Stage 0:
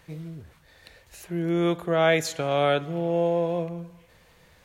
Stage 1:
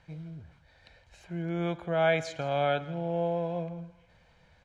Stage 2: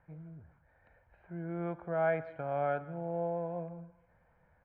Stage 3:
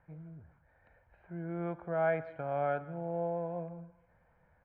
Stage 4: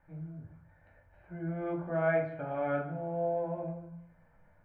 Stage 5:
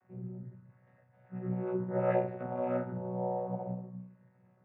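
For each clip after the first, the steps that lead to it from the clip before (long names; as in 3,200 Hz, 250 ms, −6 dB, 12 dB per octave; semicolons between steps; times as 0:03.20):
high-frequency loss of the air 110 metres; comb filter 1.3 ms, depth 46%; single-tap delay 165 ms −19 dB; level −5.5 dB
low-pass filter 1,700 Hz 24 dB per octave; low-shelf EQ 430 Hz −3.5 dB; level −3.5 dB
no processing that can be heard
rectangular room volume 300 cubic metres, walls furnished, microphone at 2.5 metres; level −2.5 dB
channel vocoder with a chord as carrier bare fifth, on B2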